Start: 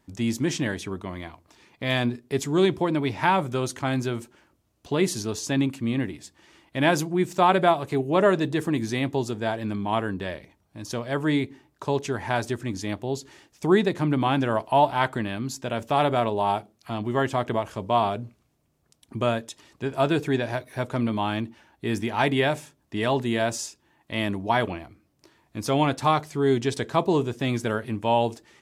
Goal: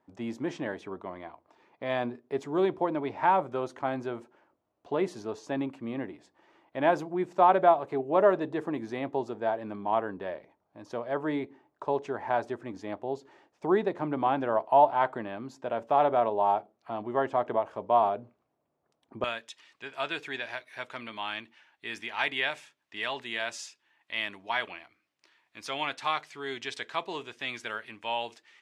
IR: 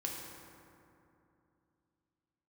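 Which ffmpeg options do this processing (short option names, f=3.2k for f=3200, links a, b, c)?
-af "asetnsamples=n=441:p=0,asendcmd='19.24 bandpass f 2400',bandpass=f=710:t=q:w=1.1:csg=0"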